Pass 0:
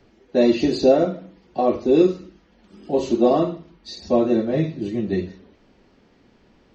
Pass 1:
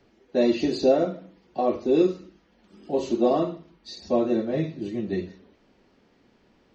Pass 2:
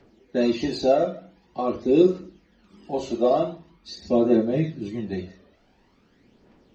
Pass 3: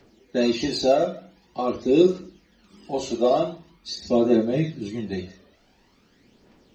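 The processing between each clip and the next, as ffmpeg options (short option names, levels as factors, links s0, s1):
-af "lowshelf=f=120:g=-5.5,volume=0.631"
-af "aphaser=in_gain=1:out_gain=1:delay=1.7:decay=0.47:speed=0.46:type=triangular"
-af "highshelf=f=3600:g=10"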